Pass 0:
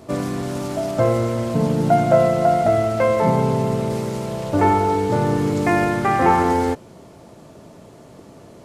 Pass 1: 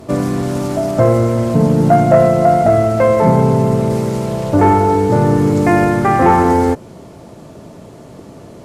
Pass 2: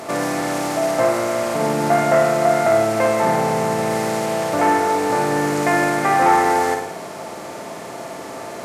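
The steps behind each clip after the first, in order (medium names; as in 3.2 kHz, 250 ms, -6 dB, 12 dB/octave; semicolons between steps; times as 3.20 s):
bass shelf 470 Hz +3.5 dB; in parallel at -3.5 dB: sine folder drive 4 dB, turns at -1 dBFS; on the sum: dynamic bell 3.3 kHz, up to -5 dB, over -31 dBFS, Q 1.1; trim -3.5 dB
spectral levelling over time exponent 0.6; high-pass 1.5 kHz 6 dB/octave; on a send: flutter echo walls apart 9.4 m, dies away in 0.63 s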